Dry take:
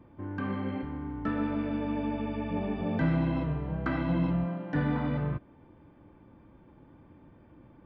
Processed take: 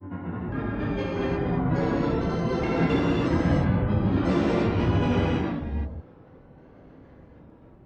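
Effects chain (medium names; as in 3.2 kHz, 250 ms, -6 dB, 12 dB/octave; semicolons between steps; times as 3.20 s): granulator, grains 22 per s, spray 369 ms, pitch spread up and down by 12 st; gated-style reverb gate 360 ms flat, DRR -7 dB; tape noise reduction on one side only decoder only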